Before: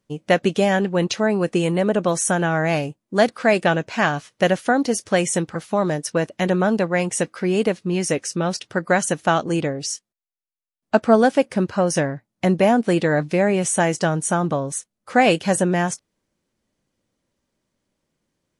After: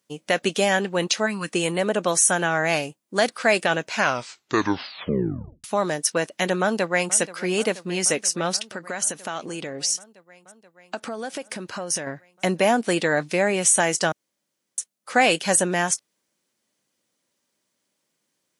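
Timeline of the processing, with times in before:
0:01.26–0:01.52: gain on a spectral selection 330–900 Hz −13 dB
0:03.91: tape stop 1.73 s
0:06.61–0:07.15: delay throw 480 ms, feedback 80%, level −17 dB
0:08.69–0:12.07: downward compressor 10 to 1, threshold −24 dBFS
0:14.12–0:14.78: fill with room tone
whole clip: high-pass filter 130 Hz; spectral tilt +2.5 dB per octave; boost into a limiter +5.5 dB; level −6 dB

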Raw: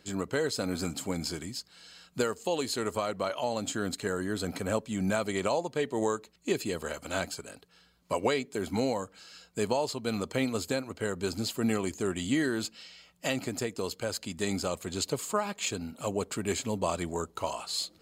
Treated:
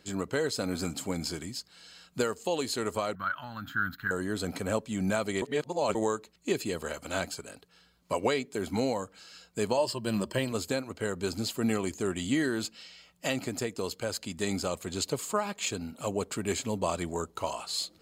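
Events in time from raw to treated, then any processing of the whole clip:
0:03.15–0:04.11: drawn EQ curve 140 Hz 0 dB, 300 Hz −10 dB, 470 Hz −26 dB, 1,000 Hz −5 dB, 1,500 Hz +13 dB, 2,300 Hz −11 dB, 3,500 Hz −7 dB, 5,900 Hz −20 dB, 8,500 Hz −29 dB, 15,000 Hz +7 dB
0:05.42–0:05.95: reverse
0:09.77–0:10.52: EQ curve with evenly spaced ripples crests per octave 1.3, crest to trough 11 dB

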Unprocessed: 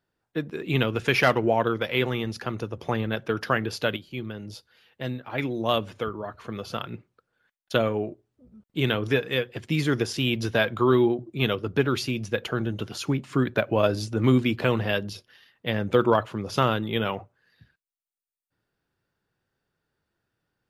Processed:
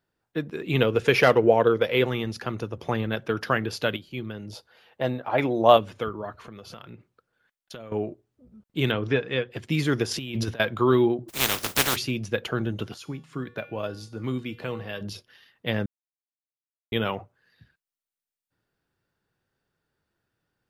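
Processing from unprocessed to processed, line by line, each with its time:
0:00.79–0:02.04: parametric band 470 Hz +8.5 dB 0.48 octaves
0:04.52–0:05.77: parametric band 710 Hz +11.5 dB 1.6 octaves
0:06.35–0:07.92: downward compressor 5 to 1, threshold −39 dBFS
0:08.91–0:09.51: high-frequency loss of the air 140 metres
0:10.11–0:10.60: compressor whose output falls as the input rises −29 dBFS, ratio −0.5
0:11.28–0:11.95: compressing power law on the bin magnitudes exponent 0.2
0:12.94–0:15.01: tuned comb filter 160 Hz, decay 0.54 s, harmonics odd, mix 70%
0:15.86–0:16.92: silence

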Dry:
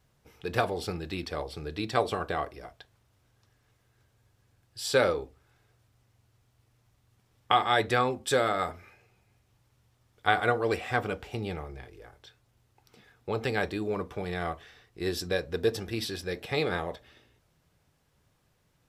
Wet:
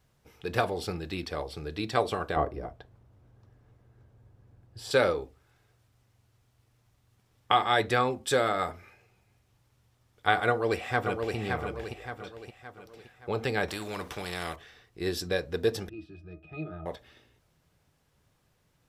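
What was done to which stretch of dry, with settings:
0:02.36–0:04.91: tilt shelving filter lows +10 dB, about 1,400 Hz
0:10.49–0:11.36: delay throw 570 ms, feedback 45%, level −4.5 dB
0:13.68–0:14.56: every bin compressed towards the loudest bin 2 to 1
0:15.89–0:16.86: resonances in every octave D#, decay 0.12 s

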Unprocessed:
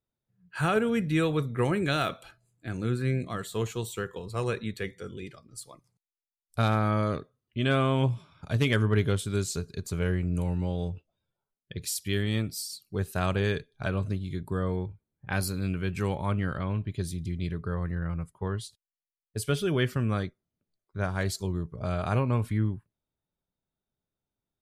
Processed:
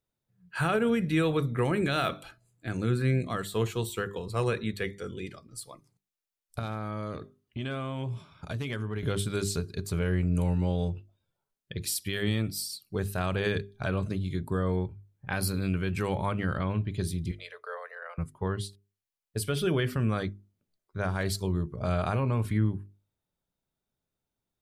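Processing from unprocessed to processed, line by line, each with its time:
0:06.59–0:09.03: downward compressor 5 to 1, threshold −32 dBFS
0:17.31–0:18.18: Chebyshev high-pass with heavy ripple 450 Hz, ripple 3 dB
whole clip: mains-hum notches 50/100/150/200/250/300/350/400 Hz; dynamic equaliser 6,700 Hz, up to −6 dB, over −58 dBFS, Q 3; brickwall limiter −20 dBFS; level +2.5 dB

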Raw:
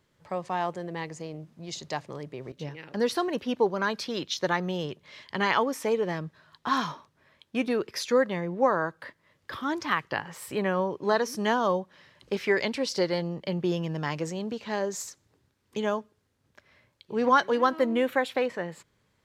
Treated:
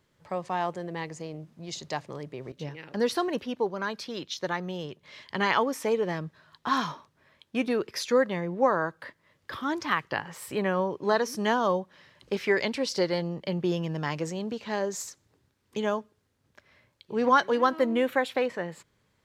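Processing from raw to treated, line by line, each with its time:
0:03.46–0:05.03: clip gain −4 dB

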